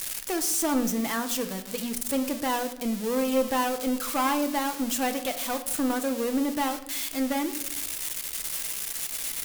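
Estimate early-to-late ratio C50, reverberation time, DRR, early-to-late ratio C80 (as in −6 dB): 12.5 dB, 0.85 s, 6.5 dB, 15.0 dB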